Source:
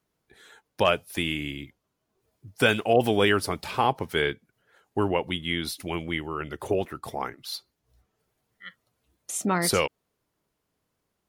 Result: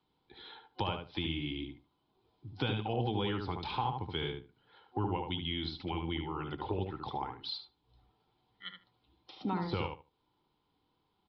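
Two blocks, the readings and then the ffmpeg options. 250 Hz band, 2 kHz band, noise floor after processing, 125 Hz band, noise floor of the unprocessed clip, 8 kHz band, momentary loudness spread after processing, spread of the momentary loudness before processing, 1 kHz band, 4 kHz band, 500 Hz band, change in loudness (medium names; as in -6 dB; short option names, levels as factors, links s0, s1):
-7.5 dB, -15.5 dB, -78 dBFS, -3.5 dB, -79 dBFS, under -40 dB, 17 LU, 15 LU, -8.5 dB, -7.5 dB, -13.5 dB, -10.5 dB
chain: -filter_complex "[0:a]deesser=0.6,superequalizer=6b=1.58:8b=0.562:9b=2.51:11b=0.562:13b=2.24,acrossover=split=140[s0][s1];[s1]acompressor=threshold=0.0141:ratio=3[s2];[s0][s2]amix=inputs=2:normalize=0,asplit=2[s3][s4];[s4]adelay=74,lowpass=f=1900:p=1,volume=0.631,asplit=2[s5][s6];[s6]adelay=74,lowpass=f=1900:p=1,volume=0.2,asplit=2[s7][s8];[s8]adelay=74,lowpass=f=1900:p=1,volume=0.2[s9];[s3][s5][s7][s9]amix=inputs=4:normalize=0,aresample=11025,aresample=44100,volume=0.841"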